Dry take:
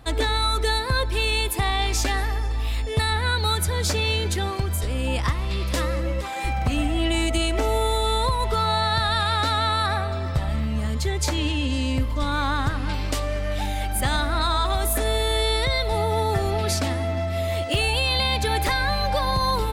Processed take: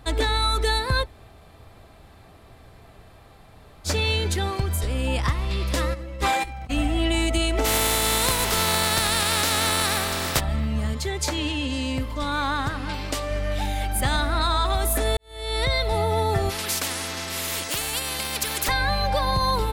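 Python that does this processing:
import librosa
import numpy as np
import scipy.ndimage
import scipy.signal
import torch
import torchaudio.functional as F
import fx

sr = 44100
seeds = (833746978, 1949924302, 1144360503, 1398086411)

y = fx.over_compress(x, sr, threshold_db=-31.0, ratio=-0.5, at=(5.93, 6.69), fade=0.02)
y = fx.spec_flatten(y, sr, power=0.37, at=(7.64, 10.39), fade=0.02)
y = fx.low_shelf(y, sr, hz=140.0, db=-7.5, at=(10.93, 13.31))
y = fx.spectral_comp(y, sr, ratio=4.0, at=(16.49, 18.67), fade=0.02)
y = fx.edit(y, sr, fx.room_tone_fill(start_s=1.04, length_s=2.83, crossfade_s=0.06),
    fx.fade_in_span(start_s=15.17, length_s=0.46, curve='qua'), tone=tone)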